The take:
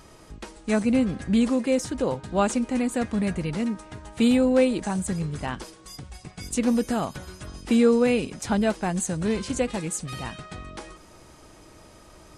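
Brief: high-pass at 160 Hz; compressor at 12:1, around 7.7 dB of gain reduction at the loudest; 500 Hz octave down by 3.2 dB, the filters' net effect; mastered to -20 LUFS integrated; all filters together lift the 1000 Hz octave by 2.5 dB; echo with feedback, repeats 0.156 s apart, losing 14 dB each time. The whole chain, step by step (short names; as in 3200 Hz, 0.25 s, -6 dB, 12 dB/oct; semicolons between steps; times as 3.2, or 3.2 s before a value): HPF 160 Hz; bell 500 Hz -4.5 dB; bell 1000 Hz +5 dB; compressor 12:1, threshold -25 dBFS; feedback echo 0.156 s, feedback 20%, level -14 dB; gain +11 dB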